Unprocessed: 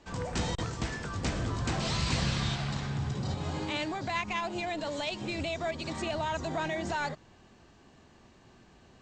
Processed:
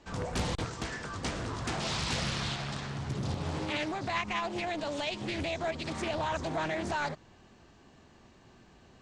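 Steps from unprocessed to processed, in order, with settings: 0.65–3.09 low shelf 220 Hz -7 dB; Doppler distortion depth 0.65 ms

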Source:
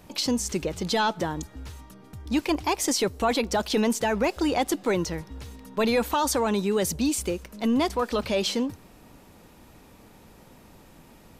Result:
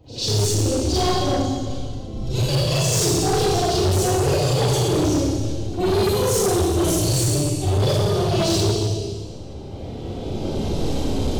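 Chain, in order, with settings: octaver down 2 oct, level -5 dB; recorder AGC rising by 10 dB/s; low-pass opened by the level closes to 2200 Hz, open at -19.5 dBFS; band shelf 1500 Hz -15 dB; formant-preserving pitch shift +9 st; Schroeder reverb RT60 1.7 s, combs from 29 ms, DRR -10 dB; overloaded stage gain 16 dB; on a send: reverse echo 98 ms -19 dB

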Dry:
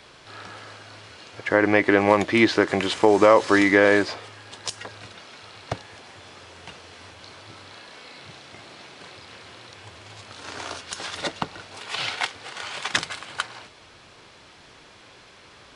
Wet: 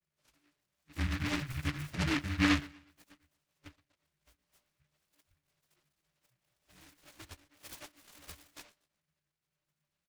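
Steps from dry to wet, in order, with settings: short-time reversal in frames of 59 ms; spectral noise reduction 17 dB; high shelf 2500 Hz +6 dB; frequency shift -220 Hz; octave resonator D, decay 0.13 s; envelope flanger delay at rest 5.2 ms, full sweep at -26.5 dBFS; time stretch by phase-locked vocoder 0.64×; chorus voices 2, 0.55 Hz, delay 12 ms, depth 5 ms; feedback echo 0.121 s, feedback 37%, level -22 dB; noise-modulated delay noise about 1800 Hz, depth 0.36 ms

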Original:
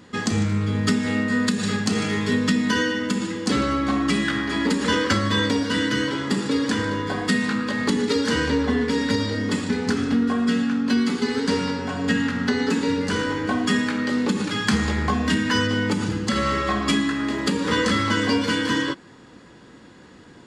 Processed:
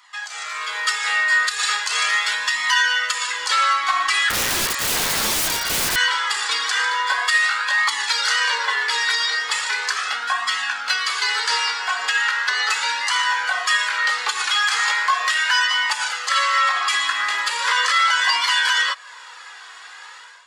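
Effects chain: inverse Chebyshev high-pass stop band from 160 Hz, stop band 80 dB; in parallel at -0.5 dB: compressor 10:1, threshold -40 dBFS, peak gain reduction 21 dB; on the sum: limiter -17.5 dBFS, peak gain reduction 11 dB; AGC gain up to 12.5 dB; flange 0.38 Hz, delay 0.9 ms, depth 1.9 ms, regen -22%; 4.3–5.96 wrapped overs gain 16 dB

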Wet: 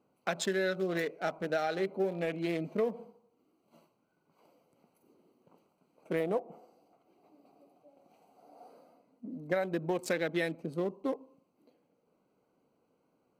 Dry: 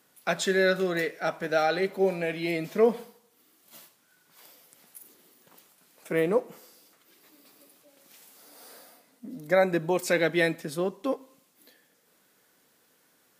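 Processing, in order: Wiener smoothing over 25 samples; 6.2–8.7 bell 730 Hz +12.5 dB 0.34 oct; compressor 6:1, threshold -26 dBFS, peak gain reduction 10 dB; gain -1.5 dB

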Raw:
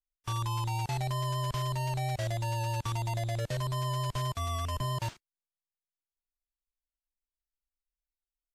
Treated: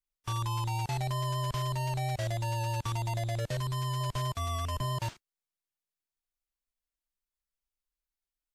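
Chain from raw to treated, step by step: 3.6–4.01 bell 650 Hz -9 dB 0.62 oct

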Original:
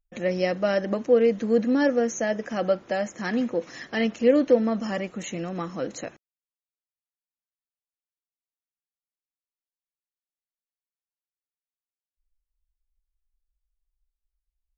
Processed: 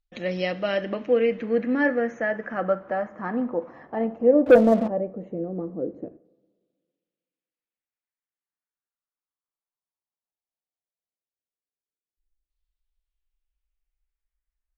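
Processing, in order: LFO low-pass saw down 0.16 Hz 350–4200 Hz; two-slope reverb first 0.53 s, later 1.9 s, from -16 dB, DRR 13 dB; 4.46–4.88 sample leveller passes 2; gain -2.5 dB

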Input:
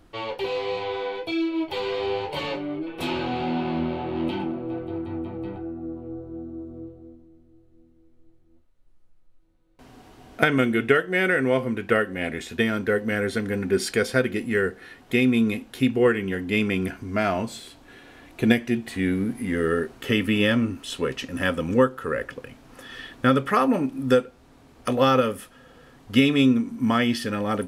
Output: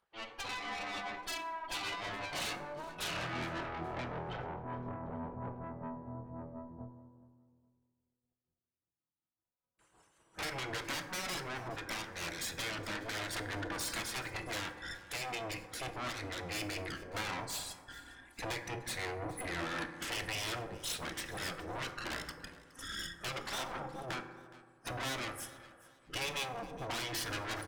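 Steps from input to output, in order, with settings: formant sharpening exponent 1.5; LPF 10000 Hz; spectral noise reduction 21 dB; HPF 120 Hz 12 dB/oct; resonant low shelf 670 Hz -7.5 dB, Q 1.5; compressor 2.5:1, threshold -35 dBFS, peak gain reduction 13 dB; tremolo 5.3 Hz, depth 39%; tube stage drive 45 dB, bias 0.4; spectral gate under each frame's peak -10 dB weak; feedback echo 0.418 s, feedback 31%, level -20.5 dB; on a send at -7.5 dB: reverb RT60 1.8 s, pre-delay 3 ms; on the sum: gain +14 dB

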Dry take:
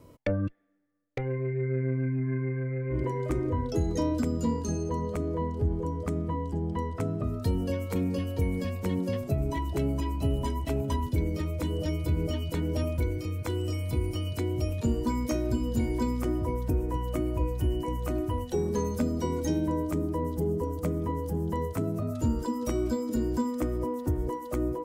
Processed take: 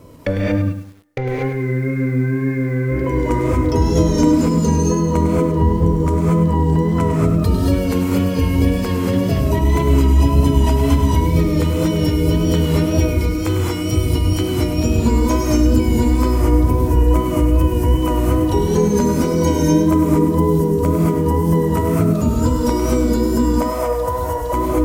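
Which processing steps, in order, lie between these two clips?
23.45–24.53 resonant low shelf 440 Hz -10.5 dB, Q 3; in parallel at -2.5 dB: limiter -27 dBFS, peak gain reduction 10 dB; on the sum: non-linear reverb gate 0.26 s rising, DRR -4 dB; wow and flutter 34 cents; lo-fi delay 0.102 s, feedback 35%, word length 8-bit, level -9 dB; gain +5.5 dB

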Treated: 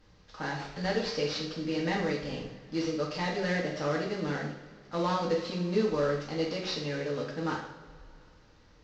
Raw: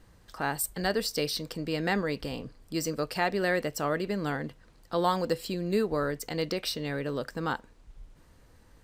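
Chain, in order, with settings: CVSD 32 kbps; two-slope reverb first 0.62 s, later 2.9 s, from -19 dB, DRR -3 dB; gain -5.5 dB

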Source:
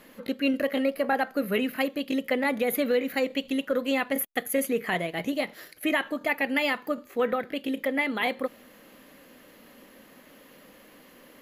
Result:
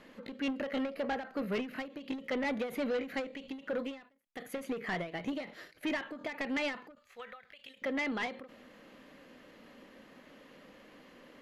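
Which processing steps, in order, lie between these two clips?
6.95–7.82 passive tone stack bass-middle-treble 10-0-10; soft clip -26 dBFS, distortion -10 dB; air absorption 80 m; ending taper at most 140 dB/s; gain -2.5 dB

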